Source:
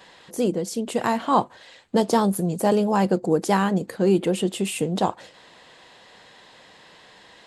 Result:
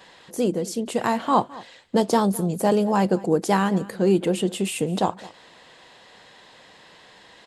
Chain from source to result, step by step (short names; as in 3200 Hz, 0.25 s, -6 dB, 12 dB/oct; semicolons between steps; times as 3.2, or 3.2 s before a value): echo 0.211 s -20.5 dB